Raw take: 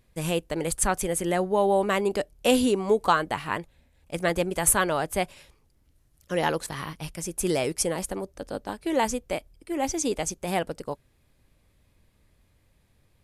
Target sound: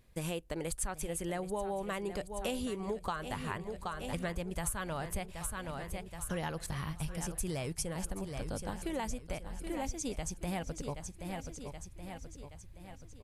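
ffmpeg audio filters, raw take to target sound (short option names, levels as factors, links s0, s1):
-af "aecho=1:1:775|1550|2325|3100|3875:0.224|0.112|0.056|0.028|0.014,asubboost=boost=5.5:cutoff=140,acompressor=threshold=0.0224:ratio=5,volume=0.841"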